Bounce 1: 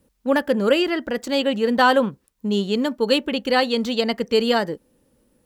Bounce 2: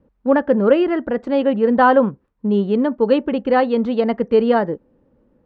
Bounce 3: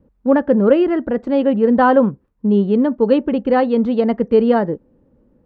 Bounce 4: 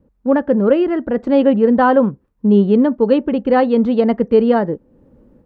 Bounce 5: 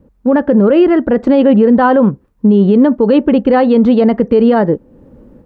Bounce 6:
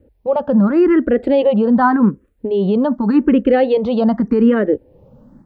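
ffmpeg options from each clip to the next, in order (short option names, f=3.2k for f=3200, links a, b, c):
-af "lowpass=1.3k,volume=4.5dB"
-af "lowshelf=f=480:g=7,volume=-2.5dB"
-af "dynaudnorm=f=180:g=3:m=8dB,volume=-1dB"
-af "alimiter=level_in=9.5dB:limit=-1dB:release=50:level=0:latency=1,volume=-1dB"
-filter_complex "[0:a]asplit=2[a][b];[b]afreqshift=0.85[c];[a][c]amix=inputs=2:normalize=1,volume=-1dB"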